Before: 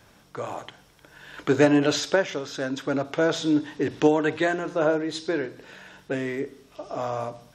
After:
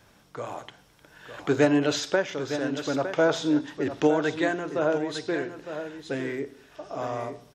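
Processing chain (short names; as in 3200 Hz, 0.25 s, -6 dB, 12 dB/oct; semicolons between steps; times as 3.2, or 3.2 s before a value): 2.97–3.61 dynamic EQ 860 Hz, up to +6 dB, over -35 dBFS, Q 0.94; echo 0.908 s -10 dB; gain -2.5 dB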